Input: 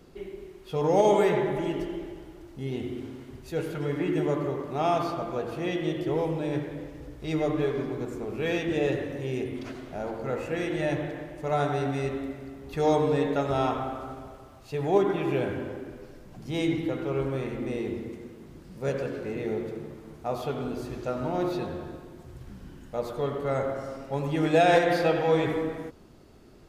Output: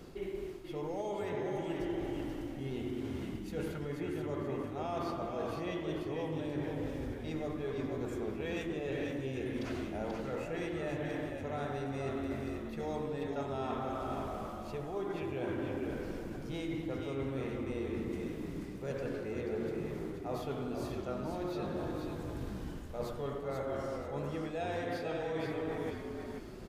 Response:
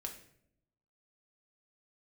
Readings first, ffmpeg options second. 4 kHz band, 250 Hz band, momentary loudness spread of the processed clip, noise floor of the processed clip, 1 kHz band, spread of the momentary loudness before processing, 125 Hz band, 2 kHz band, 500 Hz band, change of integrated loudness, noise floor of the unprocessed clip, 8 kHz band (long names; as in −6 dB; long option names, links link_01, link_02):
−9.5 dB, −7.5 dB, 4 LU, −43 dBFS, −11.0 dB, 18 LU, −7.5 dB, −9.5 dB, −10.0 dB, −10.0 dB, −49 dBFS, −8.5 dB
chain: -filter_complex "[0:a]areverse,acompressor=threshold=-38dB:ratio=12,areverse,asplit=5[link_01][link_02][link_03][link_04][link_05];[link_02]adelay=484,afreqshift=-50,volume=-5dB[link_06];[link_03]adelay=968,afreqshift=-100,volume=-15.2dB[link_07];[link_04]adelay=1452,afreqshift=-150,volume=-25.3dB[link_08];[link_05]adelay=1936,afreqshift=-200,volume=-35.5dB[link_09];[link_01][link_06][link_07][link_08][link_09]amix=inputs=5:normalize=0,volume=3dB"